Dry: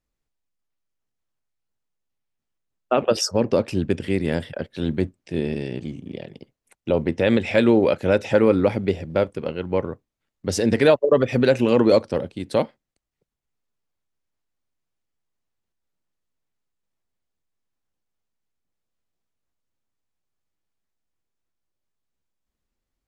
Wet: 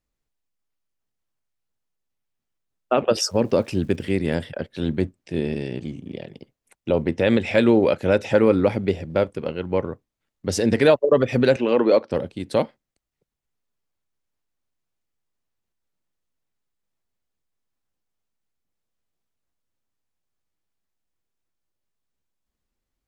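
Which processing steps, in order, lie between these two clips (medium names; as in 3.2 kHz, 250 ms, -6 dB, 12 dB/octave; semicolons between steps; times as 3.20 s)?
3.19–4.11 s: crackle 500 per s -47 dBFS; 11.56–12.11 s: band-pass 280–3500 Hz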